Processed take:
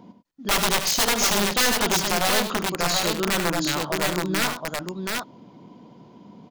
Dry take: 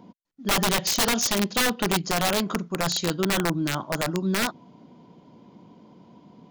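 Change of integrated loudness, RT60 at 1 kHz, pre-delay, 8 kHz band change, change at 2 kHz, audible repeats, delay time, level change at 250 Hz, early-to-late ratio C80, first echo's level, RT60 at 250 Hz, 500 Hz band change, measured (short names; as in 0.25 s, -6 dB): +2.0 dB, none, none, +3.5 dB, +3.5 dB, 2, 74 ms, -1.0 dB, none, -10.0 dB, none, +2.0 dB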